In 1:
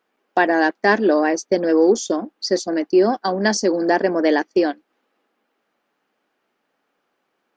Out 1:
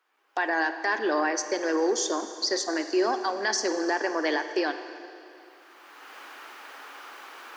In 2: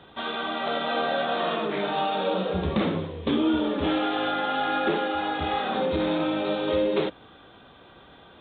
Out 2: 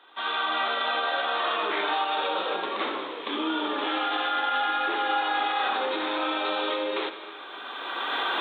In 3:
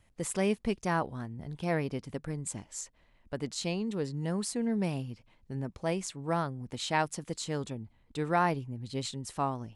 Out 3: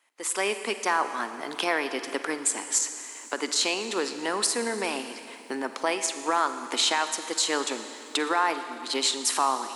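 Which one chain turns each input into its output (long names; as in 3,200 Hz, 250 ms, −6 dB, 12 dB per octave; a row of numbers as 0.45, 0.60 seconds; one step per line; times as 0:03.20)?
camcorder AGC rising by 20 dB per second
Butterworth high-pass 290 Hz 36 dB per octave
low shelf with overshoot 760 Hz −7 dB, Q 1.5
brickwall limiter −15 dBFS
four-comb reverb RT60 2.7 s, DRR 9 dB
loudness normalisation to −27 LKFS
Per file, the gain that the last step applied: −1.5, −3.5, +2.0 decibels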